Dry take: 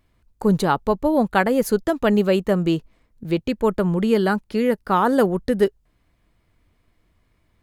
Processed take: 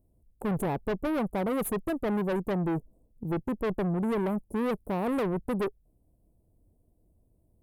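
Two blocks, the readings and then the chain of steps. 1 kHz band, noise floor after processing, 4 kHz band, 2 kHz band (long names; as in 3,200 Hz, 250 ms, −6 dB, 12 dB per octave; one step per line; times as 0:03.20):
−12.0 dB, −68 dBFS, −15.0 dB, −12.5 dB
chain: inverse Chebyshev band-stop filter 1,800–3,900 Hz, stop band 70 dB
speech leveller 0.5 s
tube saturation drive 26 dB, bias 0.4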